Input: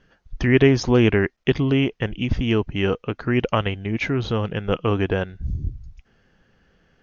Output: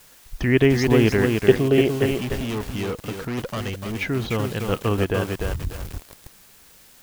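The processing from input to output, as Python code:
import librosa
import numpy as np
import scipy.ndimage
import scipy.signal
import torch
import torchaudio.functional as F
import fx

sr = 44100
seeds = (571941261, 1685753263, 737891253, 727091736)

p1 = fx.spec_box(x, sr, start_s=1.43, length_s=0.59, low_hz=350.0, high_hz=800.0, gain_db=8)
p2 = fx.quant_dither(p1, sr, seeds[0], bits=6, dither='triangular')
p3 = p1 + (p2 * librosa.db_to_amplitude(-11.0))
p4 = fx.overload_stage(p3, sr, gain_db=21.0, at=(2.1, 4.01))
p5 = fx.echo_crushed(p4, sr, ms=296, feedback_pct=35, bits=5, wet_db=-3.5)
y = p5 * librosa.db_to_amplitude(-4.0)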